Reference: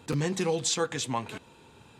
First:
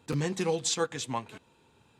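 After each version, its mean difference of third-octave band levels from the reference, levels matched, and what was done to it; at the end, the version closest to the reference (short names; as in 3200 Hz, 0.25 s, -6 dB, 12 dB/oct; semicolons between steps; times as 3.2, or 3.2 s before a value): 3.5 dB: upward expander 1.5:1, over -42 dBFS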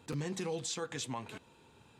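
1.5 dB: limiter -21 dBFS, peak gain reduction 6 dB; gain -7 dB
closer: second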